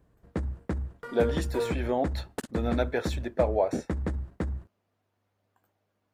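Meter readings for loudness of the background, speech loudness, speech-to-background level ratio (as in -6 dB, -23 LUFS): -34.0 LUFS, -30.5 LUFS, 3.5 dB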